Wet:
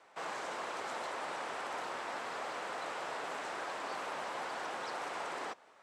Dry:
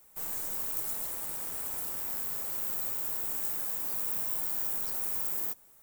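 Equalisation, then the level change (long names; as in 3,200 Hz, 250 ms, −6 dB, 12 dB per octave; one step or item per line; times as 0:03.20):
band-pass filter 680–4,300 Hz
high-frequency loss of the air 58 metres
spectral tilt −2.5 dB per octave
+12.5 dB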